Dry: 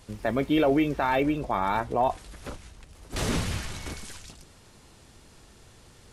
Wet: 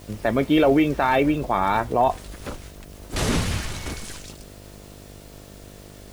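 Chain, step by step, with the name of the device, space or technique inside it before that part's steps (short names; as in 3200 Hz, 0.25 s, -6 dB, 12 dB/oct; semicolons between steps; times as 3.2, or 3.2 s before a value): video cassette with head-switching buzz (buzz 50 Hz, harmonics 14, -50 dBFS -3 dB/oct; white noise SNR 30 dB); gain +5 dB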